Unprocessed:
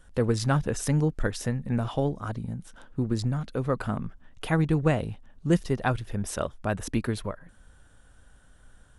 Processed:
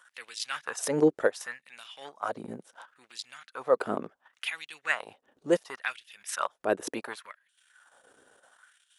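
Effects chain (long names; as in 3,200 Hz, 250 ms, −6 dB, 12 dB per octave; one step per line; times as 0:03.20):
transient designer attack −7 dB, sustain −11 dB
auto-filter high-pass sine 0.7 Hz 370–3,000 Hz
level +3.5 dB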